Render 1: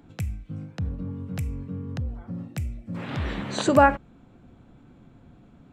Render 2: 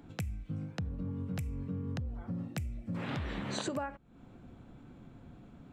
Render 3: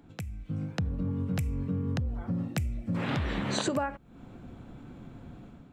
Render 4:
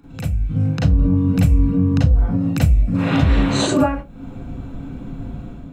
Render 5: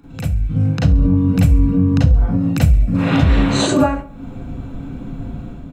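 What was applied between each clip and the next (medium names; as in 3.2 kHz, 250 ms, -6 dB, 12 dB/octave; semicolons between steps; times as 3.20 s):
compression 16:1, threshold -32 dBFS, peak gain reduction 22 dB; trim -1 dB
level rider gain up to 8.5 dB; trim -2 dB
reverberation RT60 0.20 s, pre-delay 35 ms, DRR -5 dB; trim +3 dB
feedback delay 68 ms, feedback 52%, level -20 dB; trim +2 dB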